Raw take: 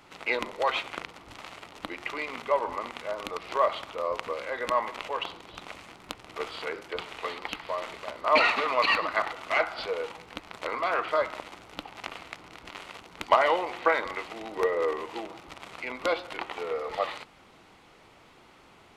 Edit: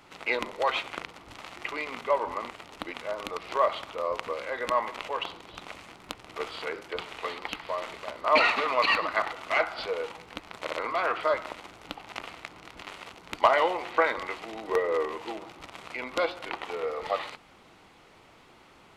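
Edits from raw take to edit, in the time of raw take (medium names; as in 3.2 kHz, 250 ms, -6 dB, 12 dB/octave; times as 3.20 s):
1.56–1.97 s: move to 2.94 s
10.61 s: stutter 0.06 s, 3 plays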